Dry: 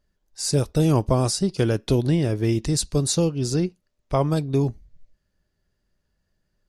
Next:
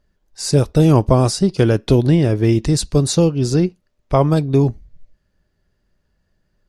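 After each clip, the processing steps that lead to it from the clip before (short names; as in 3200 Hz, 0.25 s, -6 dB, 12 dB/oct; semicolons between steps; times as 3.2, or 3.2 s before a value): high shelf 4600 Hz -7.5 dB; gain +7 dB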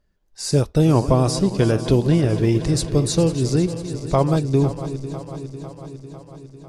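regenerating reverse delay 0.25 s, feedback 79%, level -12.5 dB; gain -3.5 dB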